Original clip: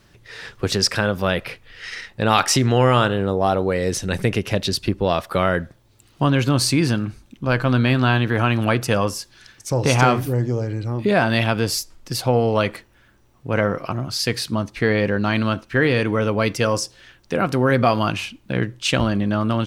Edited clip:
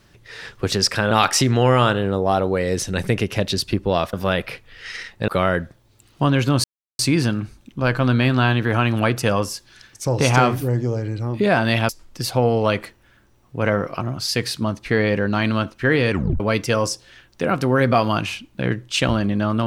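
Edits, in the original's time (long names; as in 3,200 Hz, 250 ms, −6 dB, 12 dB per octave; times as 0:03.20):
0:01.11–0:02.26: move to 0:05.28
0:06.64: splice in silence 0.35 s
0:11.54–0:11.80: remove
0:16.02: tape stop 0.29 s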